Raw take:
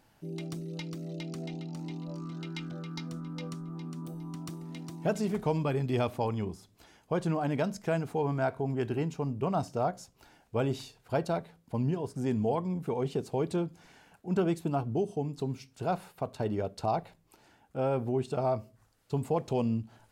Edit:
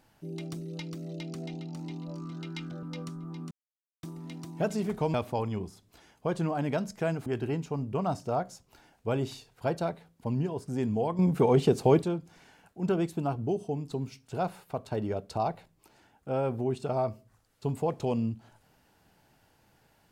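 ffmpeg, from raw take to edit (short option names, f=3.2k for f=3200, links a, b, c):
-filter_complex "[0:a]asplit=8[a][b][c][d][e][f][g][h];[a]atrim=end=2.832[i];[b]atrim=start=3.278:end=3.96,asetpts=PTS-STARTPTS,afade=t=out:st=0.678:d=0.004:c=hsin[j];[c]atrim=start=3.96:end=4.48,asetpts=PTS-STARTPTS,volume=0[k];[d]atrim=start=4.48:end=5.592,asetpts=PTS-STARTPTS,afade=t=in:d=0.004:c=hsin[l];[e]atrim=start=5.998:end=8.122[m];[f]atrim=start=8.738:end=12.672[n];[g]atrim=start=12.668:end=13.502,asetpts=PTS-STARTPTS,volume=9dB[o];[h]atrim=start=13.498[p];[j][k][l]concat=n=3:v=0:a=1[q];[i][q]acrossfade=d=0.004:c1=hsin:c2=hsin[r];[r][m]acrossfade=d=0.004:c1=hsin:c2=hsin[s];[s][n]acrossfade=d=0.004:c1=hsin:c2=hsin[t];[t][o]acrossfade=d=0.004:c1=hsin:c2=hsin[u];[u][p]acrossfade=d=0.004:c1=hsin:c2=hsin"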